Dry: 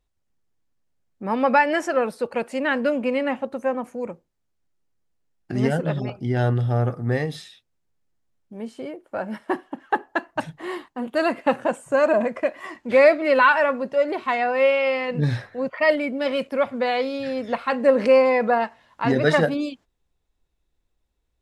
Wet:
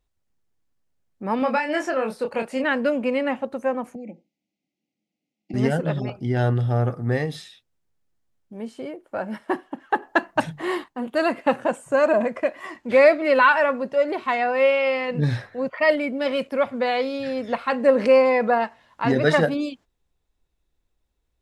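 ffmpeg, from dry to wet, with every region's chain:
-filter_complex "[0:a]asettb=1/sr,asplit=3[s0][s1][s2];[s0]atrim=end=1.394[s3];[s1]atrim=start=1.39:end=2.64,asetpts=PTS-STARTPTS,afade=t=in:d=0.004:c=qsin,afade=t=out:st=1.246:d=0.004:c=qsin,acrossover=split=2300|5500[s4][s5][s6];[s4]acompressor=threshold=0.0891:ratio=4[s7];[s5]acompressor=threshold=0.02:ratio=4[s8];[s6]acompressor=threshold=0.00316:ratio=4[s9];[s7][s8][s9]amix=inputs=3:normalize=0,asplit=2[s10][s11];[s11]adelay=27,volume=0.562[s12];[s10][s12]amix=inputs=2:normalize=0,atrim=end_sample=55125[s13];[s2]atrim=start=2.636[s14];[s3][s13]acrossfade=d=0.004:c1=hsin:c2=qsin[s15];[s15][s14]acrossfade=d=0.004:c1=qsin:c2=hsin,asettb=1/sr,asplit=3[s16][s17][s18];[s16]atrim=end=3.954[s19];[s17]atrim=start=3.95:end=5.54,asetpts=PTS-STARTPTS,afade=t=in:d=0.004:c=qsin,afade=t=out:st=1.586:d=0.004:c=qsin,acompressor=threshold=0.01:ratio=2.5:attack=3.2:release=140:knee=1:detection=peak,asuperstop=centerf=1300:order=20:qfactor=1.1,highpass=f=150:w=0.5412,highpass=f=150:w=1.3066,equalizer=f=210:t=q:w=4:g=10,equalizer=f=300:t=q:w=4:g=10,equalizer=f=420:t=q:w=4:g=-6,equalizer=f=1000:t=q:w=4:g=4,equalizer=f=1900:t=q:w=4:g=9,equalizer=f=2700:t=q:w=4:g=4,lowpass=f=6500:w=0.5412,lowpass=f=6500:w=1.3066[s20];[s18]atrim=start=5.536[s21];[s19][s20]acrossfade=d=0.004:c1=hsin:c2=qsin[s22];[s22][s21]acrossfade=d=0.004:c1=qsin:c2=hsin,asettb=1/sr,asplit=3[s23][s24][s25];[s23]atrim=end=10.024[s26];[s24]atrim=start=10.02:end=10.84,asetpts=PTS-STARTPTS,afade=t=in:d=0.004:c=qsin,afade=t=out:st=0.816:d=0.004:c=qsin,bandreject=f=50:t=h:w=6,bandreject=f=100:t=h:w=6,bandreject=f=150:t=h:w=6,bandreject=f=200:t=h:w=6,acontrast=28[s27];[s25]atrim=start=10.836[s28];[s26][s27]acrossfade=d=0.004:c1=hsin:c2=qsin[s29];[s29][s28]acrossfade=d=0.004:c1=qsin:c2=hsin"

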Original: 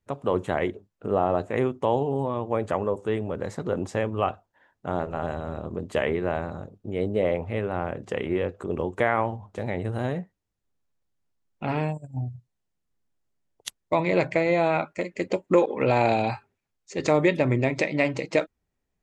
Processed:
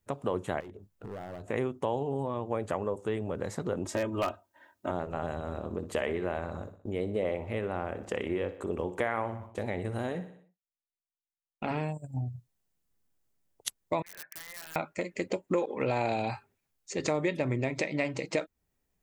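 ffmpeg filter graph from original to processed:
-filter_complex "[0:a]asettb=1/sr,asplit=3[s0][s1][s2];[s0]atrim=end=0.604[s3];[s1]atrim=start=0.6:end=1.48,asetpts=PTS-STARTPTS,afade=t=in:d=0.004:c=qsin,afade=t=out:st=0.876:d=0.004:c=qsin,lowshelf=f=190:g=9,acompressor=threshold=0.00794:ratio=2.5:attack=3.2:release=140:knee=1:detection=peak,asoftclip=type=hard:threshold=0.015[s4];[s2]atrim=start=1.476[s5];[s3][s4]acrossfade=d=0.004:c1=hsin:c2=qsin[s6];[s6][s5]acrossfade=d=0.004:c1=qsin:c2=hsin,asettb=1/sr,asplit=3[s7][s8][s9];[s7]atrim=end=3.854[s10];[s8]atrim=start=3.85:end=4.91,asetpts=PTS-STARTPTS,afade=t=in:d=0.004:c=qsin,afade=t=out:st=1.056:d=0.004:c=qsin,highpass=91,aecho=1:1:3.2:0.95,atrim=end_sample=46746,aeval=exprs='0.2*(abs(mod(val(0)/0.2+3,4)-2)-1)':c=same[s11];[s9]atrim=start=4.906[s12];[s10][s11]acrossfade=d=0.004:c1=hsin:c2=qsin[s13];[s13][s12]acrossfade=d=0.004:c1=qsin:c2=hsin,asettb=1/sr,asplit=3[s14][s15][s16];[s14]atrim=end=5.424[s17];[s15]atrim=start=5.42:end=11.71,asetpts=PTS-STARTPTS,afade=t=in:d=0.004:c=qsin,afade=t=out:st=6.286:d=0.004:c=qsin,agate=range=0.0224:threshold=0.00631:ratio=3:release=100:detection=peak,equalizer=f=140:w=4.8:g=-13,aecho=1:1:61|122|183|244|305:0.178|0.0907|0.0463|0.0236|0.012,atrim=end_sample=277389[s18];[s16]atrim=start=11.706[s19];[s17][s18]acrossfade=d=0.004:c1=hsin:c2=qsin[s20];[s20][s19]acrossfade=d=0.004:c1=qsin:c2=hsin,asettb=1/sr,asplit=3[s21][s22][s23];[s21]atrim=end=14.024[s24];[s22]atrim=start=14.02:end=14.76,asetpts=PTS-STARTPTS,afade=t=in:d=0.004:c=qsin,afade=t=out:st=0.736:d=0.004:c=qsin,bandpass=f=1700:t=q:w=17,aeval=exprs='(mod(94.4*val(0)+1,2)-1)/94.4':c=same[s25];[s23]atrim=start=14.756[s26];[s24][s25]acrossfade=d=0.004:c1=hsin:c2=qsin[s27];[s27][s26]acrossfade=d=0.004:c1=qsin:c2=hsin,highshelf=f=9000:g=11.5,acompressor=threshold=0.0251:ratio=2"

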